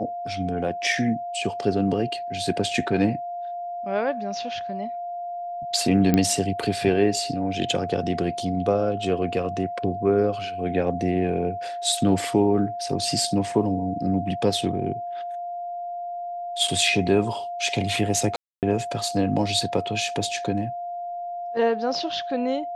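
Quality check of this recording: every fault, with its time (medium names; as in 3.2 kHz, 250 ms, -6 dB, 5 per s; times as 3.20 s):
whine 700 Hz -29 dBFS
6.14 s: pop -7 dBFS
18.36–18.63 s: dropout 268 ms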